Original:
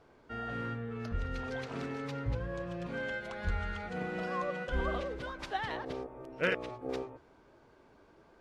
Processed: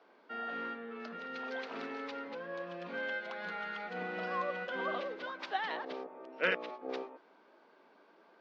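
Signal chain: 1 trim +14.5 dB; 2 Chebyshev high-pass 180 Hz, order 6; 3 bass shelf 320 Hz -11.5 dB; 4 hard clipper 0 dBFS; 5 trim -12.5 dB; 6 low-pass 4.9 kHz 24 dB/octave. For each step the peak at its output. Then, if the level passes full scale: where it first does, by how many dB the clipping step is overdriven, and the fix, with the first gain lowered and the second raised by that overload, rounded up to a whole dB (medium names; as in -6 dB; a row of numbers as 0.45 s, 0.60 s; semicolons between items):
-5.5 dBFS, -3.0 dBFS, -4.5 dBFS, -4.5 dBFS, -17.0 dBFS, -17.5 dBFS; nothing clips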